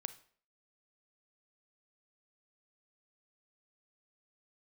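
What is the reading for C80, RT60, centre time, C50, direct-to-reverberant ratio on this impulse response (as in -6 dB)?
19.0 dB, 0.50 s, 5 ms, 14.5 dB, 12.5 dB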